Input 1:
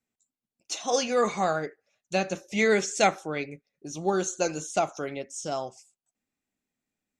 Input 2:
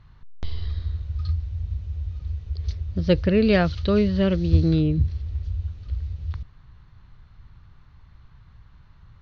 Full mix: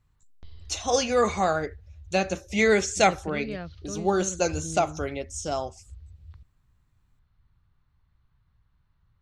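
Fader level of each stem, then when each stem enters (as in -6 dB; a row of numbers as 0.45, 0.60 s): +2.0, -17.0 dB; 0.00, 0.00 s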